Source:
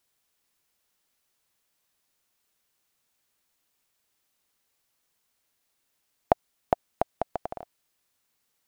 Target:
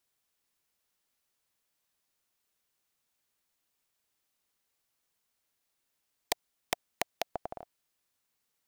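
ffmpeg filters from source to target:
-af "aeval=exprs='(mod(3.76*val(0)+1,2)-1)/3.76':c=same,volume=-5dB"

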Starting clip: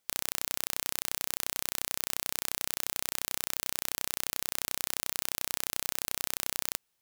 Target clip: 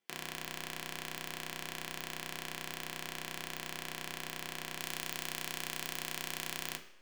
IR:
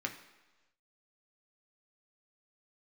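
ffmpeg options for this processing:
-filter_complex "[0:a]asetnsamples=n=441:p=0,asendcmd='4.79 highshelf g -5.5',highshelf=f=3.6k:g=-11[a];[1:a]atrim=start_sample=2205,asetrate=57330,aresample=44100[b];[a][b]afir=irnorm=-1:irlink=0,volume=1dB"

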